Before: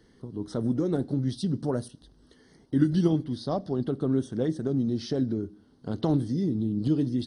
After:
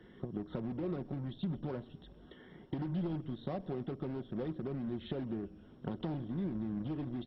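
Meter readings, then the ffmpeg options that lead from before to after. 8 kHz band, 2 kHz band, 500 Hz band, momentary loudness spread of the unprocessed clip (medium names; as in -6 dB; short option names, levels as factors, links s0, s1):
no reading, -6.5 dB, -11.0 dB, 9 LU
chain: -filter_complex "[0:a]acrossover=split=480|3000[s0][s1][s2];[s1]acompressor=threshold=0.0355:ratio=6[s3];[s0][s3][s2]amix=inputs=3:normalize=0,aresample=8000,asoftclip=type=tanh:threshold=0.0944,aresample=44100,highpass=f=45:p=1,asplit=2[s4][s5];[s5]acrusher=bits=4:mix=0:aa=0.5,volume=0.355[s6];[s4][s6]amix=inputs=2:normalize=0,alimiter=limit=0.0944:level=0:latency=1:release=435,acompressor=threshold=0.0112:ratio=8,aecho=1:1:5.5:0.33,asplit=7[s7][s8][s9][s10][s11][s12][s13];[s8]adelay=130,afreqshift=-150,volume=0.0944[s14];[s9]adelay=260,afreqshift=-300,volume=0.0603[s15];[s10]adelay=390,afreqshift=-450,volume=0.0385[s16];[s11]adelay=520,afreqshift=-600,volume=0.0248[s17];[s12]adelay=650,afreqshift=-750,volume=0.0158[s18];[s13]adelay=780,afreqshift=-900,volume=0.0101[s19];[s7][s14][s15][s16][s17][s18][s19]amix=inputs=7:normalize=0,volume=1.41" -ar 22050 -c:a mp2 -b:a 32k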